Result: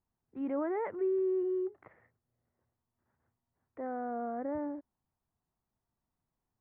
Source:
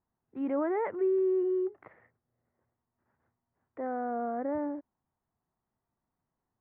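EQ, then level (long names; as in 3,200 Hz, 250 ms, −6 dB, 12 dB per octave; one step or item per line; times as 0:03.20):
low-shelf EQ 100 Hz +8 dB
−4.0 dB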